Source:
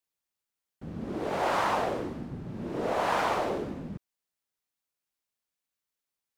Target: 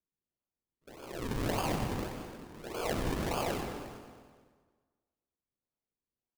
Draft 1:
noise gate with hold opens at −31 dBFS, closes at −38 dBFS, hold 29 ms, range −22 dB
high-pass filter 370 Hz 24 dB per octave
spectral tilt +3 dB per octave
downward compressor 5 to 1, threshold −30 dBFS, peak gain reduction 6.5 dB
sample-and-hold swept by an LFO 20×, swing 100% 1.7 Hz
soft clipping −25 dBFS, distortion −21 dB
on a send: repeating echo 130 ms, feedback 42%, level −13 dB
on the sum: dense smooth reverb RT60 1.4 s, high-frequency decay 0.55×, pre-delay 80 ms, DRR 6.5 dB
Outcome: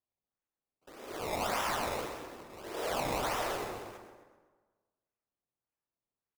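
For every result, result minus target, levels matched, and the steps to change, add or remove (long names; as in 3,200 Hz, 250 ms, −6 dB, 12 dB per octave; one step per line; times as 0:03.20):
sample-and-hold swept by an LFO: distortion −25 dB; soft clipping: distortion +21 dB; echo 86 ms early
change: sample-and-hold swept by an LFO 45×, swing 100% 1.7 Hz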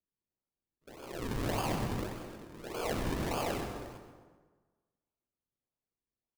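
soft clipping: distortion +21 dB; echo 86 ms early
change: soft clipping −13.5 dBFS, distortion −42 dB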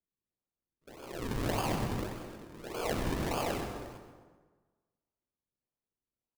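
echo 86 ms early
change: repeating echo 216 ms, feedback 42%, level −13 dB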